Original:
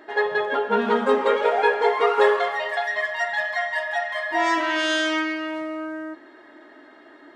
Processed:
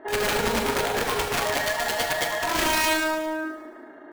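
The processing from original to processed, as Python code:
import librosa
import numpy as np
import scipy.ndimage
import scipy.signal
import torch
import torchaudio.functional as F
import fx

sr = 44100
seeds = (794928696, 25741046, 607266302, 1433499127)

p1 = scipy.signal.sosfilt(scipy.signal.butter(2, 1400.0, 'lowpass', fs=sr, output='sos'), x)
p2 = fx.over_compress(p1, sr, threshold_db=-24.0, ratio=-0.5)
p3 = p2 + fx.echo_single(p2, sr, ms=72, db=-18.0, dry=0)
p4 = (np.mod(10.0 ** (18.5 / 20.0) * p3 + 1.0, 2.0) - 1.0) / 10.0 ** (18.5 / 20.0)
p5 = fx.rev_plate(p4, sr, seeds[0], rt60_s=2.3, hf_ratio=0.9, predelay_ms=0, drr_db=0.0)
y = fx.stretch_grains(p5, sr, factor=0.56, grain_ms=73.0)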